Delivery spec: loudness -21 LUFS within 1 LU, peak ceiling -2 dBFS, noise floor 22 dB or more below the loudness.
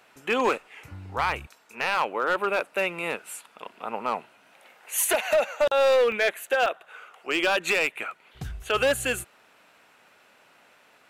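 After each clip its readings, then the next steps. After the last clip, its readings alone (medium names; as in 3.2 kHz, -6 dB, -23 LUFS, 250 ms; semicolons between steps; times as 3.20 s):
clipped samples 1.6%; clipping level -16.5 dBFS; dropouts 2; longest dropout 1.5 ms; loudness -25.5 LUFS; peak level -16.5 dBFS; loudness target -21.0 LUFS
-> clip repair -16.5 dBFS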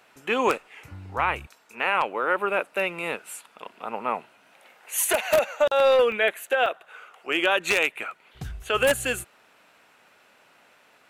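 clipped samples 0.0%; dropouts 2; longest dropout 1.5 ms
-> interpolate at 6.12/6.66 s, 1.5 ms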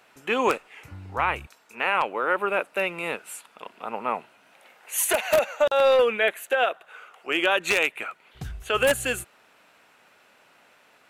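dropouts 0; loudness -24.5 LUFS; peak level -7.5 dBFS; loudness target -21.0 LUFS
-> trim +3.5 dB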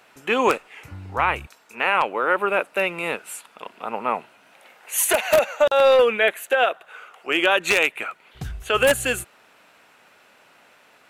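loudness -21.0 LUFS; peak level -4.0 dBFS; noise floor -55 dBFS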